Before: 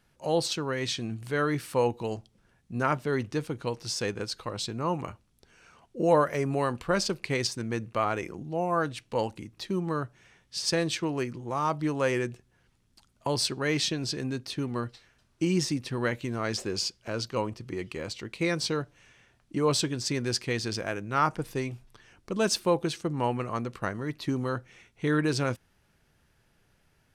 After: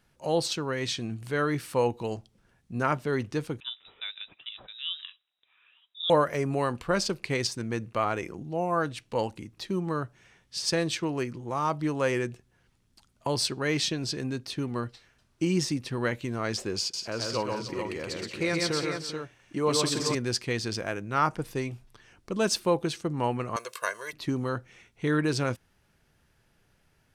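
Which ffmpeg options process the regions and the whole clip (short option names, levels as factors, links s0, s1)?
-filter_complex "[0:a]asettb=1/sr,asplit=3[s0][s1][s2];[s0]atrim=end=3.604[s3];[s1]atrim=start=3.6:end=6.1,asetpts=PTS-STARTPTS,afade=t=in:d=0.004:c=qsin,afade=t=out:st=2.496:d=0.004:c=qsin,highpass=f=770:p=1,highshelf=f=2100:g=-10.5,lowpass=f=3400:t=q:w=0.5098,lowpass=f=3400:t=q:w=0.6013,lowpass=f=3400:t=q:w=0.9,lowpass=f=3400:t=q:w=2.563,afreqshift=-4000[s4];[s2]atrim=start=6.096[s5];[s3][s4]acrossfade=d=0.004:c1=hsin:c2=qsin[s6];[s6][s5]acrossfade=d=0.004:c1=qsin:c2=hsin,asettb=1/sr,asplit=3[s7][s8][s9];[s7]atrim=end=16.814[s10];[s8]atrim=start=16.81:end=20.15,asetpts=PTS-STARTPTS,afade=t=in:d=0.004:c=qsin,afade=t=out:st=3.336:d=0.004:c=qsin,lowshelf=f=210:g=-5.5,aecho=1:1:124|176|308|394|433:0.708|0.251|0.158|0.211|0.501,atrim=end_sample=147294[s11];[s9]atrim=start=20.146[s12];[s10][s11]acrossfade=d=0.004:c1=hsin:c2=qsin[s13];[s13][s12]acrossfade=d=0.004:c1=qsin:c2=hsin,asettb=1/sr,asplit=3[s14][s15][s16];[s14]atrim=end=23.564[s17];[s15]atrim=start=23.56:end=24.13,asetpts=PTS-STARTPTS,afade=t=in:d=0.004:c=qsin,afade=t=out:st=0.566:d=0.004:c=qsin,highpass=670,aemphasis=mode=production:type=75kf,aecho=1:1:1.9:0.9,atrim=end_sample=25137[s18];[s16]atrim=start=24.126[s19];[s17][s18]acrossfade=d=0.004:c1=hsin:c2=qsin[s20];[s20][s19]acrossfade=d=0.004:c1=qsin:c2=hsin"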